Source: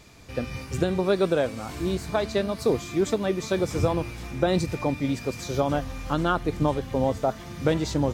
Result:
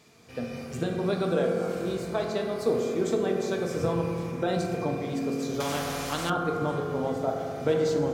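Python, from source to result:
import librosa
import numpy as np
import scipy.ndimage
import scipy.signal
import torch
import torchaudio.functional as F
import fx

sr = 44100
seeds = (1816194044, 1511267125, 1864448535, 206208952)

y = scipy.signal.sosfilt(scipy.signal.butter(2, 140.0, 'highpass', fs=sr, output='sos'), x)
y = fx.rev_fdn(y, sr, rt60_s=2.6, lf_ratio=1.4, hf_ratio=0.3, size_ms=13.0, drr_db=0.0)
y = fx.spectral_comp(y, sr, ratio=2.0, at=(5.6, 6.3))
y = y * 10.0 ** (-6.0 / 20.0)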